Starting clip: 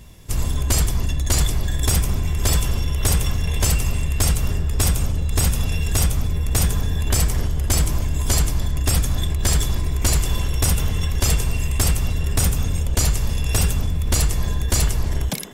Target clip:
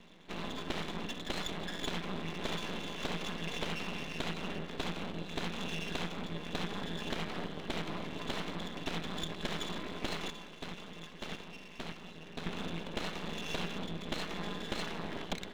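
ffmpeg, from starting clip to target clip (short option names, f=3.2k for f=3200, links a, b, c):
-filter_complex "[0:a]asettb=1/sr,asplit=3[a][b][c];[a]atrim=end=10.304[d];[b]atrim=start=10.3:end=12.47,asetpts=PTS-STARTPTS,afade=t=in:d=0.004:c=qsin,afade=t=out:st=2.166:d=0.004:c=qsin,agate=range=-10dB:threshold=-14dB:ratio=16:detection=peak[e];[c]atrim=start=12.466[f];[d][e]acrossfade=d=0.004:c1=hsin:c2=qsin[g];[g][f]acrossfade=d=0.004:c1=qsin:c2=hsin,afftfilt=real='re*between(b*sr/4096,160,4200)':imag='im*between(b*sr/4096,160,4200)':win_size=4096:overlap=0.75,acompressor=threshold=-27dB:ratio=6,aeval=exprs='max(val(0),0)':c=same,volume=-1.5dB"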